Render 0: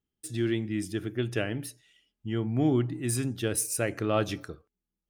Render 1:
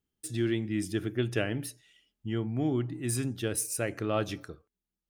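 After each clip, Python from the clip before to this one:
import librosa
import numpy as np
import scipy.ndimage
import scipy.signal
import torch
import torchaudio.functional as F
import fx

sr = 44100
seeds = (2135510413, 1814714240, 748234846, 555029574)

y = fx.rider(x, sr, range_db=4, speed_s=0.5)
y = y * librosa.db_to_amplitude(-1.5)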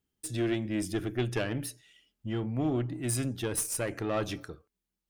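y = fx.diode_clip(x, sr, knee_db=-27.0)
y = y * librosa.db_to_amplitude(2.0)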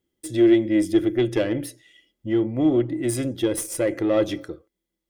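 y = fx.small_body(x, sr, hz=(340.0, 520.0, 2000.0, 3300.0), ring_ms=45, db=14)
y = y * librosa.db_to_amplitude(1.5)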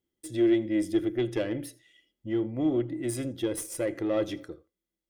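y = x + 10.0 ** (-22.5 / 20.0) * np.pad(x, (int(81 * sr / 1000.0), 0))[:len(x)]
y = y * librosa.db_to_amplitude(-7.0)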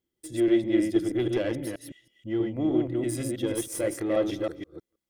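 y = fx.reverse_delay(x, sr, ms=160, wet_db=-2)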